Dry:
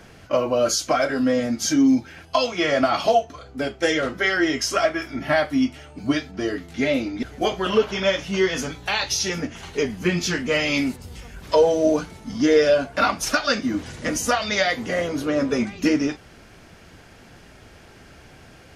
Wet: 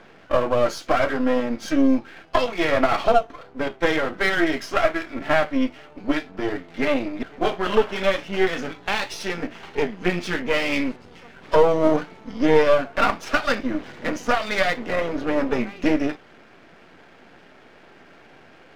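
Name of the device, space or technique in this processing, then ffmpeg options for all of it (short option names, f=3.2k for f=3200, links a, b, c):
crystal radio: -af "highpass=230,lowpass=2.7k,aeval=exprs='if(lt(val(0),0),0.251*val(0),val(0))':c=same,volume=4dB"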